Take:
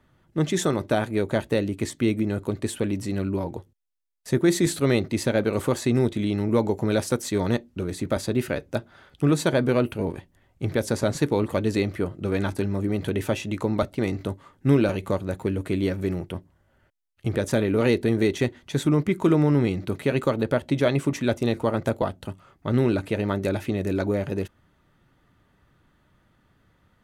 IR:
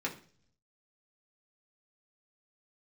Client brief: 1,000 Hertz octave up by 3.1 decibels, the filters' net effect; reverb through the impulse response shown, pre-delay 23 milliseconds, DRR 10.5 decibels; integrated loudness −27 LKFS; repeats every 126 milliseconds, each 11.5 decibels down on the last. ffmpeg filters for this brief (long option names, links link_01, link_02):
-filter_complex "[0:a]equalizer=frequency=1000:width_type=o:gain=4,aecho=1:1:126|252|378:0.266|0.0718|0.0194,asplit=2[link_01][link_02];[1:a]atrim=start_sample=2205,adelay=23[link_03];[link_02][link_03]afir=irnorm=-1:irlink=0,volume=-14.5dB[link_04];[link_01][link_04]amix=inputs=2:normalize=0,volume=-3dB"